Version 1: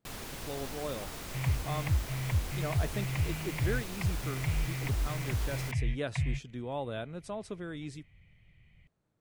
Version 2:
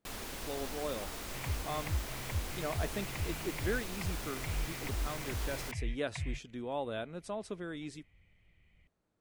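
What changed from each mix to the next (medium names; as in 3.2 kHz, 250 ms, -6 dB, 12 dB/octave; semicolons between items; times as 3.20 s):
second sound -4.0 dB; master: add peaking EQ 130 Hz -10 dB 0.57 oct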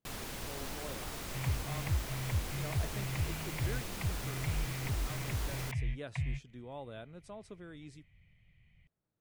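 speech -9.0 dB; master: add peaking EQ 130 Hz +10 dB 0.57 oct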